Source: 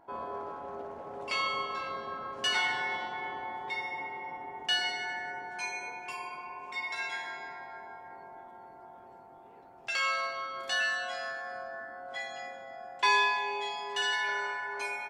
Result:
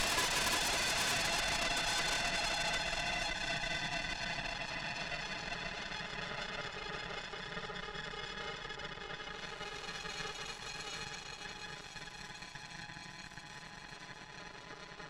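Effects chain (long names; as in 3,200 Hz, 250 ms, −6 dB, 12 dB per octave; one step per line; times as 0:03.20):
extreme stretch with random phases 22×, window 0.05 s, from 0:13.18
harmonic generator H 3 −12 dB, 7 −21 dB, 8 −10 dB, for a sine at −12.5 dBFS
level −9 dB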